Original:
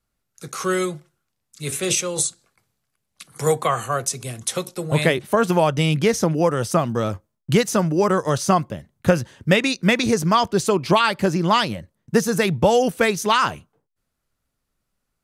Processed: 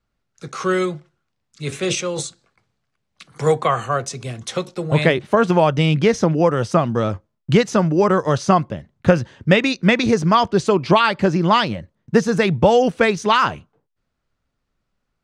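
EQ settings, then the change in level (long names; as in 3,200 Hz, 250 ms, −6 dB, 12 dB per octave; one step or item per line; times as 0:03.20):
high-frequency loss of the air 110 metres
+3.0 dB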